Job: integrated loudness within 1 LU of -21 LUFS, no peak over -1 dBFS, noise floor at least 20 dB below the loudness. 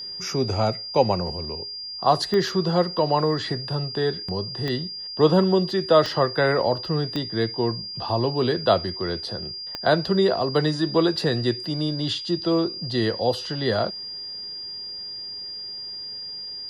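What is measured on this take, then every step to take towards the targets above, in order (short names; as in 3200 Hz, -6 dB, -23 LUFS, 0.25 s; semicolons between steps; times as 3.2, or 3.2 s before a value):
clicks 5; steady tone 4800 Hz; tone level -32 dBFS; loudness -24.0 LUFS; peak -4.5 dBFS; loudness target -21.0 LUFS
-> de-click; notch 4800 Hz, Q 30; gain +3 dB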